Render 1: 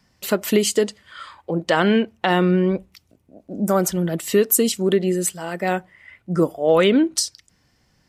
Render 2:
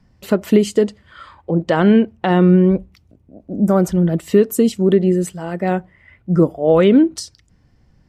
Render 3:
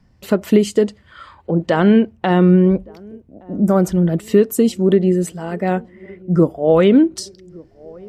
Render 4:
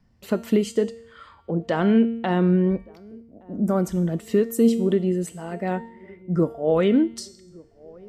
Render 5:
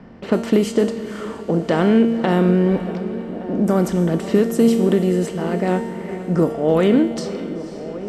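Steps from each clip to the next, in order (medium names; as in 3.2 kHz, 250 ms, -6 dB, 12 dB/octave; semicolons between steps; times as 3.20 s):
tilt EQ -3 dB/octave
band-passed feedback delay 1168 ms, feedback 60%, band-pass 370 Hz, level -24 dB
feedback comb 230 Hz, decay 0.76 s, mix 70%; trim +2.5 dB
spectral levelling over time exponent 0.6; level-controlled noise filter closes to 2.5 kHz, open at -13.5 dBFS; echo that smears into a reverb 511 ms, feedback 48%, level -13 dB; trim +1.5 dB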